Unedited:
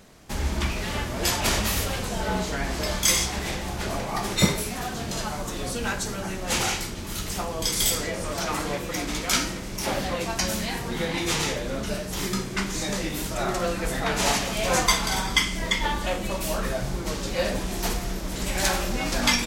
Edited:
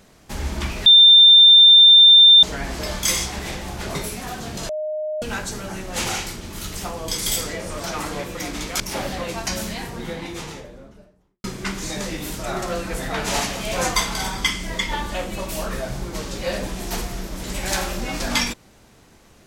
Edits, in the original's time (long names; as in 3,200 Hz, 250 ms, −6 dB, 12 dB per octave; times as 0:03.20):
0:00.86–0:02.43: beep over 3,590 Hz −6 dBFS
0:03.95–0:04.49: remove
0:05.23–0:05.76: beep over 615 Hz −23 dBFS
0:09.34–0:09.72: remove
0:10.42–0:12.36: fade out and dull